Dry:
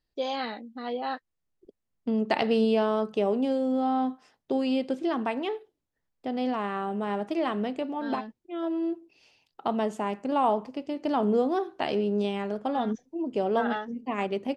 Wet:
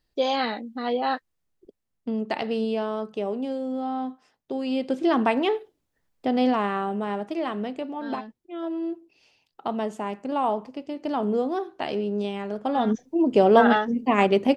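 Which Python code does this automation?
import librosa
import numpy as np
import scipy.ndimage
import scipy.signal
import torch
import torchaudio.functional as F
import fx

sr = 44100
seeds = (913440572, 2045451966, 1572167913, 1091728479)

y = fx.gain(x, sr, db=fx.line((1.14, 6.5), (2.39, -3.0), (4.56, -3.0), (5.15, 7.5), (6.42, 7.5), (7.29, -0.5), (12.44, -0.5), (13.17, 10.0)))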